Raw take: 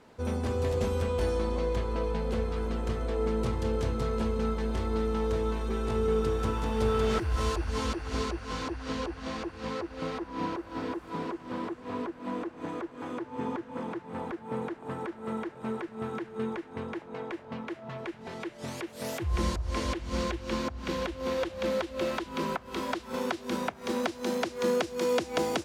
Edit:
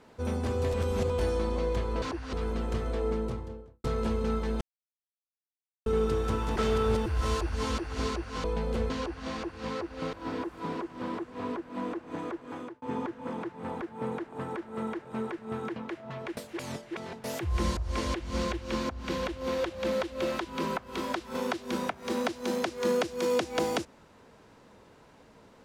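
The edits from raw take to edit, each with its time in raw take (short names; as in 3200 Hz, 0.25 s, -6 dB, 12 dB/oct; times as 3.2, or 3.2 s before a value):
0.74–1.1 reverse
2.02–2.48 swap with 8.59–8.9
3.07–3.99 studio fade out
4.76–6.01 mute
6.71–7.21 reverse
10.13–10.63 cut
12.9–13.32 fade out equal-power
16.26–17.55 cut
18.16–19.03 reverse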